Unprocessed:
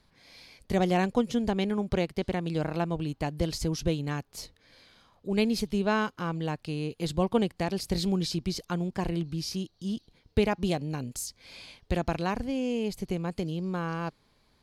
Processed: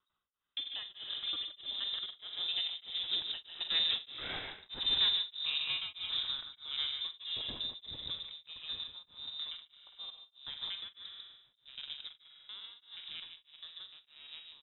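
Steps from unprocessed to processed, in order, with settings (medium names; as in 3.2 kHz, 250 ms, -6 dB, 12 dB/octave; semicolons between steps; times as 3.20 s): slices played last to first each 107 ms, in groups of 6; Doppler pass-by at 4.29 s, 39 m/s, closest 4.4 m; high-pass 48 Hz 12 dB/octave; in parallel at -2.5 dB: compression, threshold -56 dBFS, peak gain reduction 20.5 dB; on the sum: waveshaping leveller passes 3; saturation -33 dBFS, distortion -13 dB; on a send: delay 147 ms -6 dB; on the sum: spring tank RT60 1.5 s, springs 42 ms, chirp 70 ms, DRR 5 dB; frequency inversion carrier 3.8 kHz; tremolo of two beating tones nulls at 1.6 Hz; trim +5 dB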